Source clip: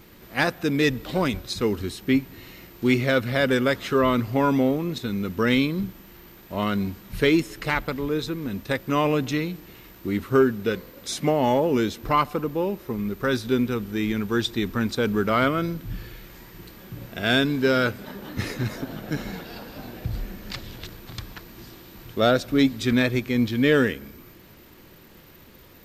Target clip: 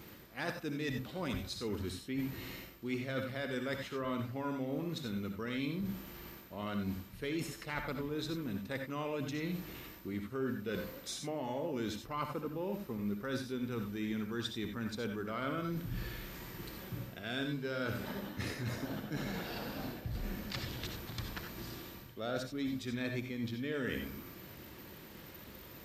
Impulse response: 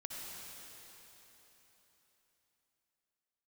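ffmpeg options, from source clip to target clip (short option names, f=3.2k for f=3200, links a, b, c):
-filter_complex "[0:a]highpass=46,areverse,acompressor=threshold=-34dB:ratio=6,areverse[a];[1:a]atrim=start_sample=2205,atrim=end_sample=4410[b];[a][b]afir=irnorm=-1:irlink=0,volume=3dB"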